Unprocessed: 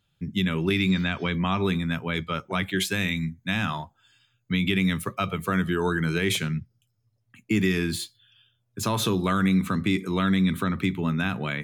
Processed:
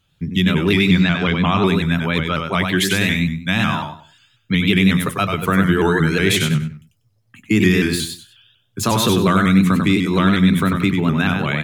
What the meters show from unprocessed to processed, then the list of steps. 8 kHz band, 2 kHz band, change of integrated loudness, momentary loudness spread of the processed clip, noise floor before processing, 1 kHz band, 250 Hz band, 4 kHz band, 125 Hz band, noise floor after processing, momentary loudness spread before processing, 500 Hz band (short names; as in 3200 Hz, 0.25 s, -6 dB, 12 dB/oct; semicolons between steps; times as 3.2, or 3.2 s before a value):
+8.5 dB, +8.5 dB, +9.0 dB, 7 LU, -72 dBFS, +9.0 dB, +9.0 dB, +8.5 dB, +9.0 dB, -63 dBFS, 7 LU, +9.0 dB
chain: on a send: feedback echo 96 ms, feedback 25%, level -5 dB; on the sum: shaped vibrato saw up 5.5 Hz, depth 100 cents; gain +7.5 dB